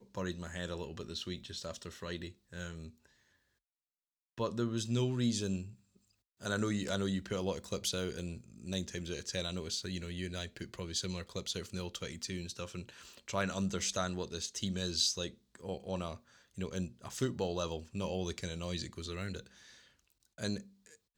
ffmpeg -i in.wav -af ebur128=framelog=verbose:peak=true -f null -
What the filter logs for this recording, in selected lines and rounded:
Integrated loudness:
  I:         -37.9 LUFS
  Threshold: -48.4 LUFS
Loudness range:
  LRA:         6.8 LU
  Threshold: -58.3 LUFS
  LRA low:   -42.7 LUFS
  LRA high:  -35.9 LUFS
True peak:
  Peak:      -17.9 dBFS